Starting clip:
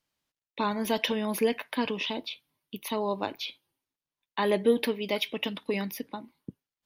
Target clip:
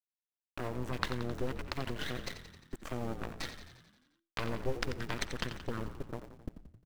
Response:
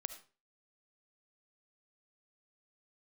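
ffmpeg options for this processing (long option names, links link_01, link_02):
-filter_complex "[0:a]afwtdn=0.00891,bass=frequency=250:gain=-2,treble=frequency=4000:gain=5,acompressor=threshold=-41dB:ratio=2.5,aeval=exprs='0.0891*(cos(1*acos(clip(val(0)/0.0891,-1,1)))-cos(1*PI/2))+0.0355*(cos(3*acos(clip(val(0)/0.0891,-1,1)))-cos(3*PI/2))+0.0112*(cos(4*acos(clip(val(0)/0.0891,-1,1)))-cos(4*PI/2))+0.00398*(cos(6*acos(clip(val(0)/0.0891,-1,1)))-cos(6*PI/2))+0.00316*(cos(8*acos(clip(val(0)/0.0891,-1,1)))-cos(8*PI/2))':channel_layout=same,asetrate=24750,aresample=44100,atempo=1.7818,aeval=exprs='val(0)*gte(abs(val(0)),0.00133)':channel_layout=same,asplit=9[link_01][link_02][link_03][link_04][link_05][link_06][link_07][link_08][link_09];[link_02]adelay=88,afreqshift=-42,volume=-10dB[link_10];[link_03]adelay=176,afreqshift=-84,volume=-14dB[link_11];[link_04]adelay=264,afreqshift=-126,volume=-18dB[link_12];[link_05]adelay=352,afreqshift=-168,volume=-22dB[link_13];[link_06]adelay=440,afreqshift=-210,volume=-26.1dB[link_14];[link_07]adelay=528,afreqshift=-252,volume=-30.1dB[link_15];[link_08]adelay=616,afreqshift=-294,volume=-34.1dB[link_16];[link_09]adelay=704,afreqshift=-336,volume=-38.1dB[link_17];[link_01][link_10][link_11][link_12][link_13][link_14][link_15][link_16][link_17]amix=inputs=9:normalize=0,asplit=2[link_18][link_19];[1:a]atrim=start_sample=2205[link_20];[link_19][link_20]afir=irnorm=-1:irlink=0,volume=-5dB[link_21];[link_18][link_21]amix=inputs=2:normalize=0,volume=11dB"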